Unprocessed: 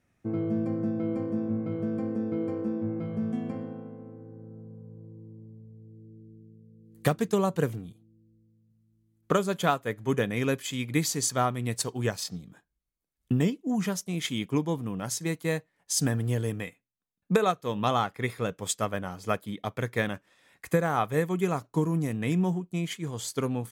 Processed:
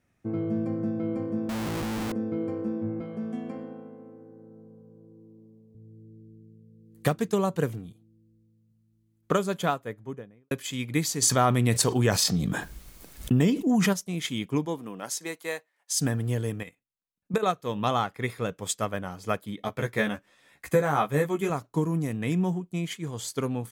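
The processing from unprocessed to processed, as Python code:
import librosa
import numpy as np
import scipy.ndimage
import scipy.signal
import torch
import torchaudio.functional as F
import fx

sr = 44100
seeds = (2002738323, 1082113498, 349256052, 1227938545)

y = fx.schmitt(x, sr, flips_db=-42.0, at=(1.49, 2.12))
y = fx.highpass(y, sr, hz=220.0, slope=12, at=(3.01, 5.75))
y = fx.studio_fade_out(y, sr, start_s=9.46, length_s=1.05)
y = fx.env_flatten(y, sr, amount_pct=70, at=(11.21, 13.92), fade=0.02)
y = fx.highpass(y, sr, hz=fx.line((14.65, 220.0), (15.99, 850.0)), slope=12, at=(14.65, 15.99), fade=0.02)
y = fx.level_steps(y, sr, step_db=11, at=(16.63, 17.43))
y = fx.doubler(y, sr, ms=14.0, db=-3.0, at=(19.57, 21.5))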